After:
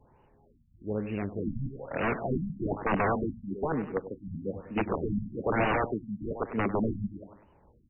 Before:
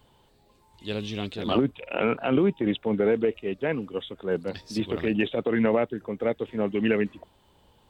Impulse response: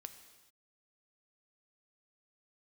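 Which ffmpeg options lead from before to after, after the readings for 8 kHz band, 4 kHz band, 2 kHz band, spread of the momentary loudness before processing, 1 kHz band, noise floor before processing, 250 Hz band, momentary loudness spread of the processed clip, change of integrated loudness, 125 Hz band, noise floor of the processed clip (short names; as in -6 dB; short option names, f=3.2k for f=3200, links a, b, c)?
n/a, -14.5 dB, -2.0 dB, 9 LU, +2.5 dB, -62 dBFS, -5.5 dB, 10 LU, -5.0 dB, 0.0 dB, -63 dBFS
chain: -filter_complex "[0:a]aeval=exprs='(mod(8.91*val(0)+1,2)-1)/8.91':c=same,highshelf=f=3.3k:g=-8.5,asplit=2[a][b];[b]aecho=0:1:99|198|297|396:0.251|0.108|0.0464|0.02[c];[a][c]amix=inputs=2:normalize=0,afftfilt=real='re*lt(b*sr/1024,250*pow(3000/250,0.5+0.5*sin(2*PI*1.1*pts/sr)))':imag='im*lt(b*sr/1024,250*pow(3000/250,0.5+0.5*sin(2*PI*1.1*pts/sr)))':win_size=1024:overlap=0.75"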